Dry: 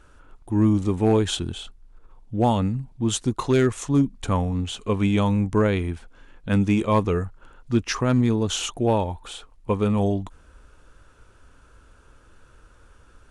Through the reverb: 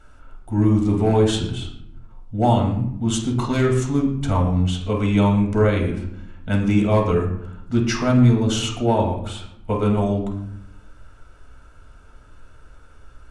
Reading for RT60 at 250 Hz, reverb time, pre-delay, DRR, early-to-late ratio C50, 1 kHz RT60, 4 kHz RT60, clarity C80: 1.2 s, 0.70 s, 4 ms, 0.0 dB, 6.0 dB, 0.70 s, 0.45 s, 9.0 dB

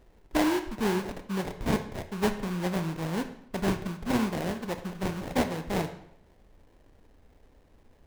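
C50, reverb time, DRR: 11.0 dB, 0.75 s, 8.0 dB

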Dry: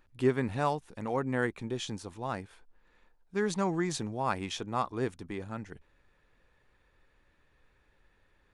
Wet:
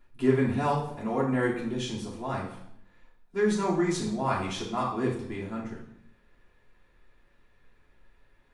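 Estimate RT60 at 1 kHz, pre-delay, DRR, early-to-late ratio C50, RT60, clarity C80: 0.70 s, 3 ms, −7.0 dB, 5.5 dB, 0.75 s, 9.0 dB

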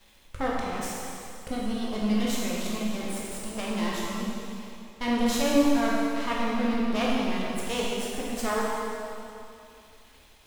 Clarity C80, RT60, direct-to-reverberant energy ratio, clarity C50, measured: −0.5 dB, 2.6 s, −5.0 dB, −2.0 dB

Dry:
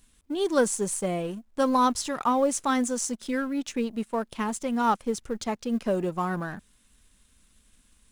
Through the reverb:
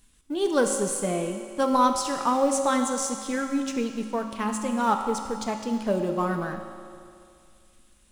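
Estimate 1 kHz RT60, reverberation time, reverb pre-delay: 2.3 s, 2.3 s, 4 ms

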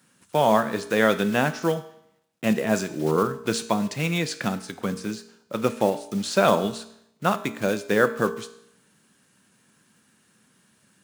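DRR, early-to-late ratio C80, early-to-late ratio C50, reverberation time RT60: 10.0 dB, 16.5 dB, 14.0 dB, 0.75 s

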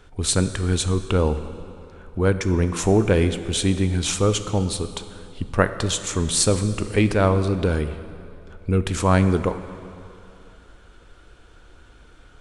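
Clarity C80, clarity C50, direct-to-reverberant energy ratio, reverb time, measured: 12.0 dB, 11.0 dB, 10.0 dB, 2.8 s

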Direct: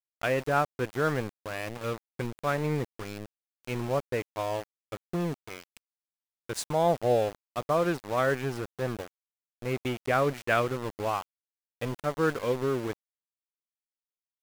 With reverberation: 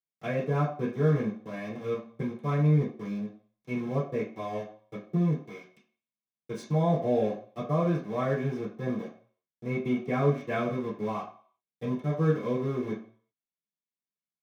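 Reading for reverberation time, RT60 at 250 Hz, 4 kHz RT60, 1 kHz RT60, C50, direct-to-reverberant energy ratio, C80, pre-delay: 0.45 s, 0.40 s, 0.50 s, 0.50 s, 7.5 dB, −9.5 dB, 12.5 dB, 3 ms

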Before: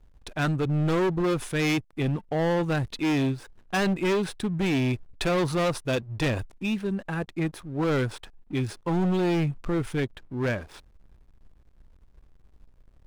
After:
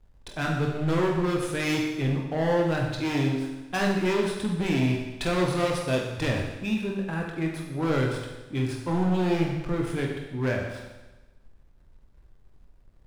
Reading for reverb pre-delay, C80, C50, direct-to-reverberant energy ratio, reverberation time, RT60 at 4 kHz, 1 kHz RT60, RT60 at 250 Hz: 21 ms, 5.5 dB, 3.5 dB, −0.5 dB, 1.1 s, 1.1 s, 1.1 s, 1.1 s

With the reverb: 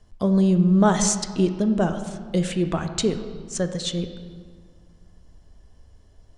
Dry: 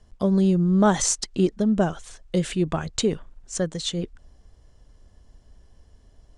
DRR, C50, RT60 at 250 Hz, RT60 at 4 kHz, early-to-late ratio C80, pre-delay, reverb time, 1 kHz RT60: 7.5 dB, 9.5 dB, 2.4 s, 1.2 s, 10.5 dB, 6 ms, 1.9 s, 1.9 s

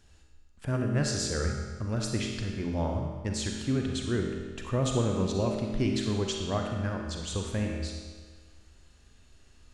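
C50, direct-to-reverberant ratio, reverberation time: 2.0 dB, 1.0 dB, 1.5 s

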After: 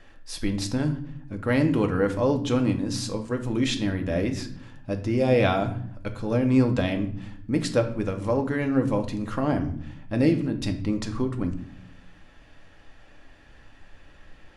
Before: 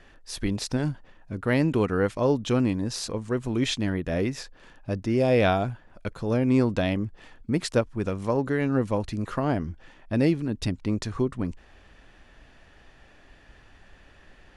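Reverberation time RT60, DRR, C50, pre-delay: 0.60 s, 4.5 dB, 11.5 dB, 4 ms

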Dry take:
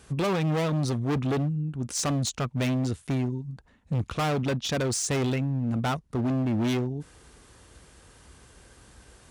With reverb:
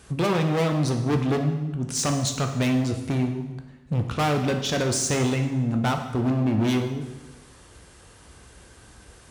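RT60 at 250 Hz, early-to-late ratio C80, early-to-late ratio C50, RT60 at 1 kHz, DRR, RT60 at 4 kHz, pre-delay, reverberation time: 1.1 s, 9.5 dB, 7.5 dB, 1.1 s, 4.5 dB, 1.0 s, 11 ms, 1.1 s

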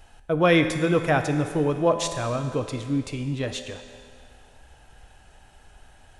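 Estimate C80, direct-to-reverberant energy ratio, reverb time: 9.0 dB, 6.5 dB, 2.1 s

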